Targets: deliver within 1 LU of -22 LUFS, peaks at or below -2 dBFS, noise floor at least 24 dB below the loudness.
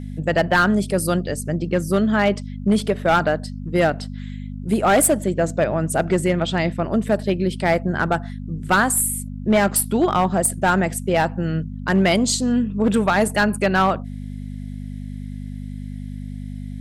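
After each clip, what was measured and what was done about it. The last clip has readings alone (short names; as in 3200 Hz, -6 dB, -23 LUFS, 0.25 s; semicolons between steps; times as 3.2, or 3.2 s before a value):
clipped 0.8%; flat tops at -10.5 dBFS; hum 50 Hz; harmonics up to 250 Hz; hum level -29 dBFS; loudness -20.0 LUFS; peak -10.5 dBFS; loudness target -22.0 LUFS
-> clip repair -10.5 dBFS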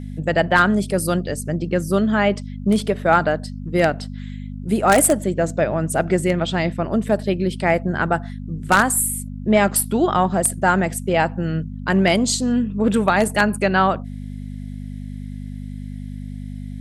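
clipped 0.0%; hum 50 Hz; harmonics up to 250 Hz; hum level -28 dBFS
-> de-hum 50 Hz, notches 5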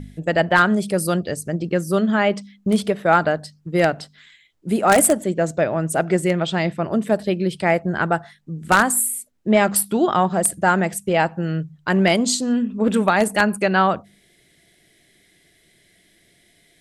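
hum none; loudness -19.5 LUFS; peak -1.0 dBFS; loudness target -22.0 LUFS
-> gain -2.5 dB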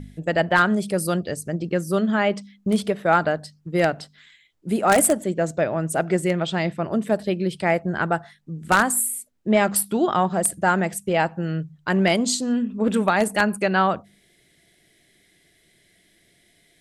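loudness -22.0 LUFS; peak -3.5 dBFS; noise floor -61 dBFS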